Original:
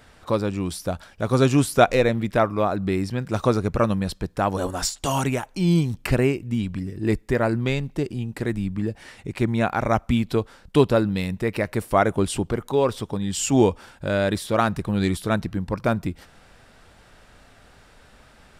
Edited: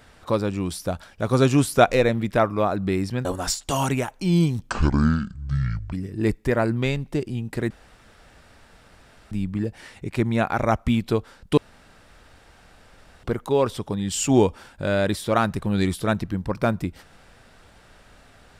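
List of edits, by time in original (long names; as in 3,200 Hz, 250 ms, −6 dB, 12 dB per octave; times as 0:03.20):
0:03.25–0:04.60: remove
0:06.05–0:06.76: play speed 58%
0:08.54: splice in room tone 1.61 s
0:10.80–0:12.46: fill with room tone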